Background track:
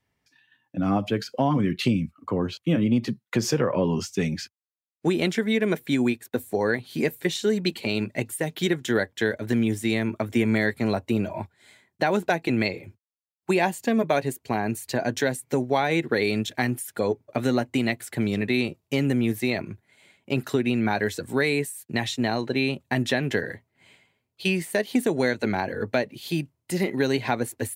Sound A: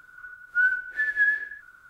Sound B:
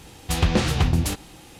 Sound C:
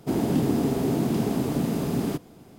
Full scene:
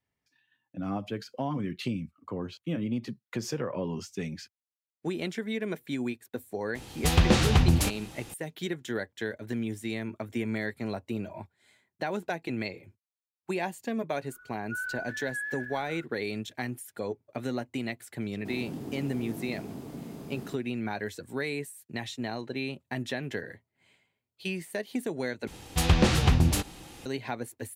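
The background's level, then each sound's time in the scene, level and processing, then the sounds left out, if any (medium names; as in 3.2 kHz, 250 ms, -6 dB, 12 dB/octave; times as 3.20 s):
background track -9.5 dB
6.75 s: add B -1 dB
14.15 s: add A -14.5 dB + decay stretcher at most 31 dB/s
18.38 s: add C -15.5 dB
25.47 s: replace with B -1.5 dB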